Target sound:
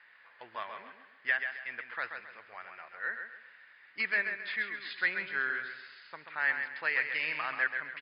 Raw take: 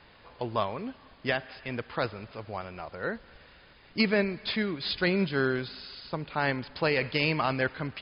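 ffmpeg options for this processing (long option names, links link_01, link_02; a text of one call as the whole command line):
ffmpeg -i in.wav -filter_complex "[0:a]bandpass=frequency=1800:width_type=q:width=4.4:csg=0,asplit=2[link_01][link_02];[link_02]aecho=0:1:134|268|402|536:0.447|0.152|0.0516|0.0176[link_03];[link_01][link_03]amix=inputs=2:normalize=0,volume=5dB" out.wav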